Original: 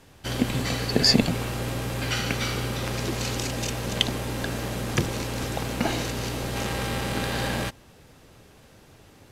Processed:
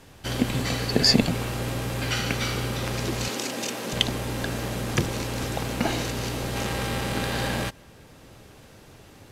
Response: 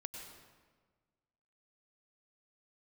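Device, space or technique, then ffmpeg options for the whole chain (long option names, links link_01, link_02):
ducked reverb: -filter_complex "[0:a]asplit=3[link_01][link_02][link_03];[1:a]atrim=start_sample=2205[link_04];[link_02][link_04]afir=irnorm=-1:irlink=0[link_05];[link_03]apad=whole_len=410895[link_06];[link_05][link_06]sidechaincompress=threshold=-45dB:ratio=8:attack=16:release=434,volume=-3dB[link_07];[link_01][link_07]amix=inputs=2:normalize=0,asettb=1/sr,asplit=3[link_08][link_09][link_10];[link_08]atrim=end=3.284[link_11];[link_09]atrim=start=3.28:end=3.93,asetpts=PTS-STARTPTS,afade=type=in:duration=0.004:curve=qsin,afade=type=out:start_time=0.646:duration=0.004:curve=qsin,highpass=frequency=190:width=0.5412,highpass=frequency=190:width=1.3066[link_12];[link_10]atrim=start=3.926[link_13];[link_11][link_12]acrossfade=duration=0.004:curve1=hsin:curve2=qsin[link_14];[link_14][link_13]acrossfade=duration=0.004:curve1=qsin:curve2=hsin"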